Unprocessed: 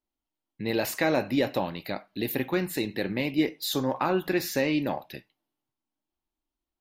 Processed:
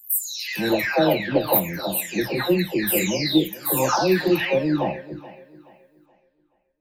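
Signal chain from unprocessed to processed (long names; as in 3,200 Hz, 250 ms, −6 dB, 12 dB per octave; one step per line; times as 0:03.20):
every frequency bin delayed by itself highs early, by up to 751 ms
high-shelf EQ 8,600 Hz +9 dB
tape delay 426 ms, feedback 37%, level −17 dB, low-pass 4,500 Hz
level +8 dB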